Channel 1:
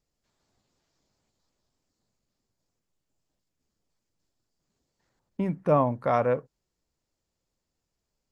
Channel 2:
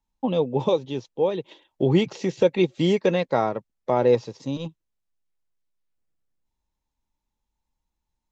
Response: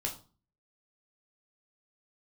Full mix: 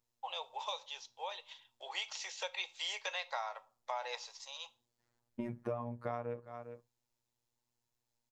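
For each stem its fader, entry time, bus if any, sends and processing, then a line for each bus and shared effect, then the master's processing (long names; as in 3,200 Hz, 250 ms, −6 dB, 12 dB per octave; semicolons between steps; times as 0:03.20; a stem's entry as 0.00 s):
−5.0 dB, 0.00 s, send −23.5 dB, echo send −18 dB, phases set to zero 119 Hz
−10.5 dB, 0.00 s, send −11 dB, no echo send, Butterworth high-pass 730 Hz 36 dB per octave; high-shelf EQ 2,700 Hz +10 dB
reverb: on, RT60 0.35 s, pre-delay 9 ms
echo: single-tap delay 405 ms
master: downward compressor 12 to 1, threshold −34 dBFS, peak gain reduction 12.5 dB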